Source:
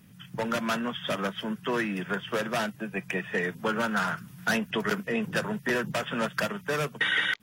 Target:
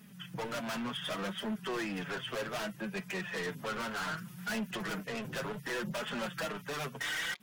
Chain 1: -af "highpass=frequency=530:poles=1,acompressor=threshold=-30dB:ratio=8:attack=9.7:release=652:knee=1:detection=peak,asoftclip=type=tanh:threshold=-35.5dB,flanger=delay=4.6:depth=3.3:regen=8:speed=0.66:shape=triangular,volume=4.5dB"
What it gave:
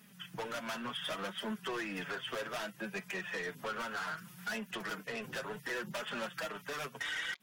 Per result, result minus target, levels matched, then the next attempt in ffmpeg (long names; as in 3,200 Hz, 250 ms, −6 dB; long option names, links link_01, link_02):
downward compressor: peak gain reduction +9.5 dB; 125 Hz band −5.0 dB
-af "highpass=frequency=530:poles=1,asoftclip=type=tanh:threshold=-35.5dB,flanger=delay=4.6:depth=3.3:regen=8:speed=0.66:shape=triangular,volume=4.5dB"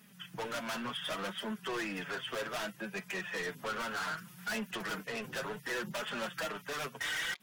125 Hz band −5.0 dB
-af "highpass=frequency=170:poles=1,asoftclip=type=tanh:threshold=-35.5dB,flanger=delay=4.6:depth=3.3:regen=8:speed=0.66:shape=triangular,volume=4.5dB"